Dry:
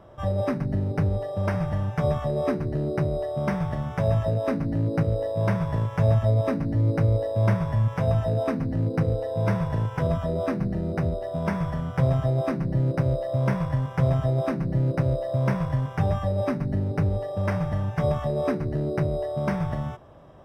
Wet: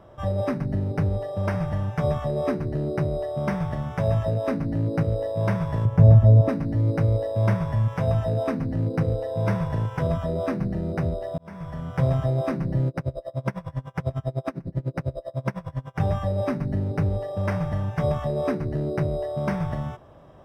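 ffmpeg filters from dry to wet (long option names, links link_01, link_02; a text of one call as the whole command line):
ffmpeg -i in.wav -filter_complex "[0:a]asettb=1/sr,asplit=3[link_01][link_02][link_03];[link_01]atrim=end=5.854[link_04];[link_02]atrim=start=5.85:end=6.49,asetpts=PTS-STARTPTS,afade=type=in:duration=0.004:curve=qsin,afade=type=out:start_time=0.636:duration=0.004:curve=qsin,tiltshelf=frequency=690:gain=8.5[link_05];[link_03]atrim=start=6.486[link_06];[link_04][link_05]acrossfade=duration=0.004:curve1=hsin:curve2=qsin[link_07];[link_07][link_06]acrossfade=duration=0.004:curve1=qsin:curve2=hsin,asettb=1/sr,asplit=3[link_08][link_09][link_10];[link_08]atrim=end=12.884[link_11];[link_09]atrim=start=12.88:end=16,asetpts=PTS-STARTPTS,afade=type=in:duration=0.004:curve=qsin,afade=type=out:start_time=3.116:duration=0.004:curve=qsin,aeval=exprs='val(0)*pow(10,-28*(0.5-0.5*cos(2*PI*10*n/s))/20)':channel_layout=same[link_12];[link_10]atrim=start=15.996[link_13];[link_11][link_12]acrossfade=duration=0.004:curve1=hsin:curve2=qsin[link_14];[link_14][link_13]acrossfade=duration=0.004:curve1=qsin:curve2=hsin,asplit=2[link_15][link_16];[link_15]atrim=end=11.38,asetpts=PTS-STARTPTS,afade=type=out:start_time=11.376:duration=0.004:curve=hsin[link_17];[link_16]atrim=start=11.38,asetpts=PTS-STARTPTS,afade=type=in:duration=0.65[link_18];[link_17][link_18]concat=n=2:v=0:a=1" out.wav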